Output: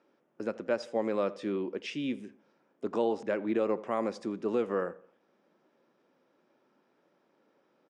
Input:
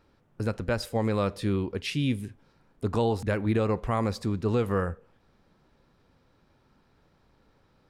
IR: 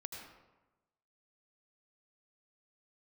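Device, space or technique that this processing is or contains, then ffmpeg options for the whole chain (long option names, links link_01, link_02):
television speaker: -filter_complex "[0:a]asettb=1/sr,asplit=3[link_01][link_02][link_03];[link_01]atrim=end=3.874[link_04];[link_02]atrim=start=3.87:end=4.63,asetpts=PTS-STARTPTS,afade=type=in:duration=0.004:curve=qsin,afade=type=out:start_time=0.756:duration=0.004:curve=qsin,equalizer=frequency=10000:width_type=o:width=0.34:gain=9[link_05];[link_03]atrim=start=4.626[link_06];[link_04][link_05]acrossfade=duration=0.004:curve1=hsin:curve2=qsin[link_07];[link_07][link_06]acrossfade=duration=0.004:curve1=qsin:curve2=hsin,highpass=frequency=210:width=0.5412,highpass=frequency=210:width=1.3066,equalizer=frequency=350:width_type=q:width=4:gain=5,equalizer=frequency=580:width_type=q:width=4:gain=6,equalizer=frequency=4200:width_type=q:width=4:gain=-9,lowpass=frequency=6700:width=0.5412,lowpass=frequency=6700:width=1.3066,asplit=2[link_08][link_09];[link_09]adelay=84,lowpass=frequency=2500:poles=1,volume=-19.5dB,asplit=2[link_10][link_11];[link_11]adelay=84,lowpass=frequency=2500:poles=1,volume=0.38,asplit=2[link_12][link_13];[link_13]adelay=84,lowpass=frequency=2500:poles=1,volume=0.38[link_14];[link_08][link_10][link_12][link_14]amix=inputs=4:normalize=0,volume=-5dB"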